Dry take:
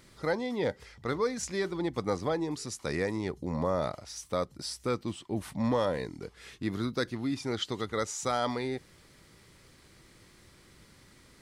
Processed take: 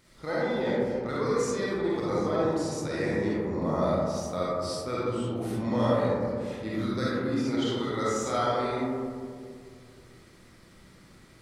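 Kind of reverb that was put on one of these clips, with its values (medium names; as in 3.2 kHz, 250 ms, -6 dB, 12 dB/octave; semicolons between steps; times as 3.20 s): algorithmic reverb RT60 2.2 s, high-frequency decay 0.25×, pre-delay 10 ms, DRR -8 dB; trim -5.5 dB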